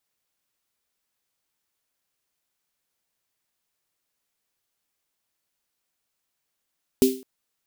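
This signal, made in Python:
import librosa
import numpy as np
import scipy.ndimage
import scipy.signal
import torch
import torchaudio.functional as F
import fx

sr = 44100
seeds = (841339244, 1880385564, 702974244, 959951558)

y = fx.drum_snare(sr, seeds[0], length_s=0.21, hz=260.0, second_hz=390.0, noise_db=-11.0, noise_from_hz=2700.0, decay_s=0.36, noise_decay_s=0.37)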